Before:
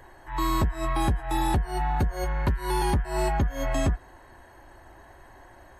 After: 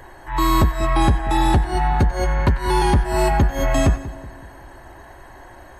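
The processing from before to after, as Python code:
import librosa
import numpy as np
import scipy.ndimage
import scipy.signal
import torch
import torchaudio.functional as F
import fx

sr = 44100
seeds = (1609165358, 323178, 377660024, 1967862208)

y = fx.lowpass(x, sr, hz=8900.0, slope=12, at=(0.74, 2.99))
y = fx.echo_split(y, sr, split_hz=680.0, low_ms=187, high_ms=94, feedback_pct=52, wet_db=-15)
y = F.gain(torch.from_numpy(y), 8.0).numpy()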